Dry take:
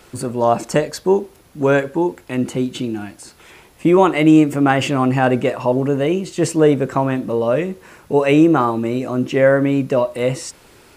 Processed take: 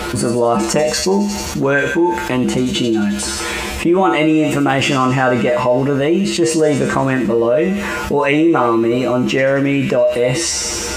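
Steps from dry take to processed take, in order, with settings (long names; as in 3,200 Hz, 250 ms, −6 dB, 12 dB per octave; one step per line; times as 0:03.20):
high-shelf EQ 7,300 Hz −9 dB
tuned comb filter 68 Hz, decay 0.29 s, harmonics odd, mix 90%
on a send: delay with a high-pass on its return 88 ms, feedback 67%, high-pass 3,500 Hz, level −5 dB
on the sum: envelope flattener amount 70%
level +5.5 dB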